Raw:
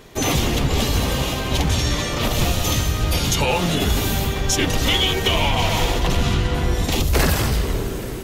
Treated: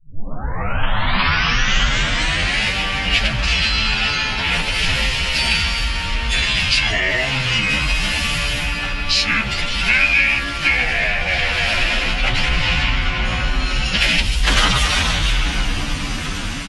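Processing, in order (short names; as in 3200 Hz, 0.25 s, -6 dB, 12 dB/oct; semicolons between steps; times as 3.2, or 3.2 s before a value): tape start at the beginning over 1.35 s; in parallel at -0.5 dB: limiter -17 dBFS, peak gain reduction 8.5 dB; on the sum: graphic EQ 125/500/2000/4000/8000 Hz -4/-11/+4/+11/+7 dB; time stretch by phase-locked vocoder 1.5×; vocal rider within 4 dB 2 s; on a send: echo 0.704 s -22 dB; on the sum: speed mistake 45 rpm record played at 33 rpm; high shelf 4900 Hz -9 dB; gain -3.5 dB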